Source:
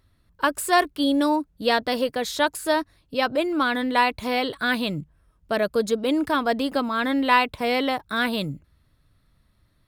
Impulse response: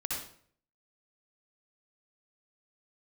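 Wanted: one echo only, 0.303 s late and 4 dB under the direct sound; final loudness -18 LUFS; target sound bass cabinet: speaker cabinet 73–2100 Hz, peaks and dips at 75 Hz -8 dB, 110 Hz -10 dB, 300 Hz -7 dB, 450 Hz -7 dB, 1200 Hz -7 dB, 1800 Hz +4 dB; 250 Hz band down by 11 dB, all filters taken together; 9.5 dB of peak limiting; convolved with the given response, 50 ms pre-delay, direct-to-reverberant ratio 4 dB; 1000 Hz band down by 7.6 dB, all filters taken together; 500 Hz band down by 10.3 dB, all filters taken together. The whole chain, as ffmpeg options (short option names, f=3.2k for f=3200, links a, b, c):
-filter_complex "[0:a]equalizer=f=250:t=o:g=-5.5,equalizer=f=500:t=o:g=-6.5,equalizer=f=1k:t=o:g=-4.5,alimiter=limit=-17dB:level=0:latency=1,aecho=1:1:303:0.631,asplit=2[a][b];[1:a]atrim=start_sample=2205,adelay=50[c];[b][c]afir=irnorm=-1:irlink=0,volume=-7.5dB[d];[a][d]amix=inputs=2:normalize=0,highpass=f=73:w=0.5412,highpass=f=73:w=1.3066,equalizer=f=75:t=q:w=4:g=-8,equalizer=f=110:t=q:w=4:g=-10,equalizer=f=300:t=q:w=4:g=-7,equalizer=f=450:t=q:w=4:g=-7,equalizer=f=1.2k:t=q:w=4:g=-7,equalizer=f=1.8k:t=q:w=4:g=4,lowpass=f=2.1k:w=0.5412,lowpass=f=2.1k:w=1.3066,volume=12dB"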